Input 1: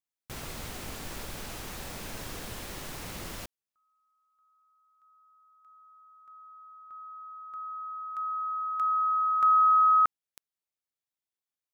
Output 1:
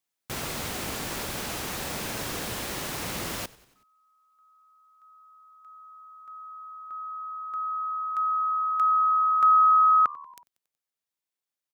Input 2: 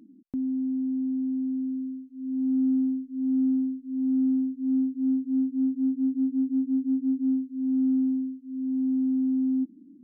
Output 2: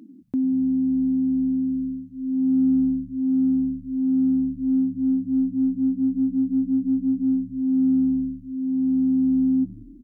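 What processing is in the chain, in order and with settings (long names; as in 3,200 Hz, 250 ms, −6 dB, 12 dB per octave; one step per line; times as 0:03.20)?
high-pass filter 120 Hz 6 dB per octave
speech leveller within 3 dB 2 s
on a send: echo with shifted repeats 93 ms, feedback 58%, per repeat −75 Hz, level −21.5 dB
on the sum: level +5 dB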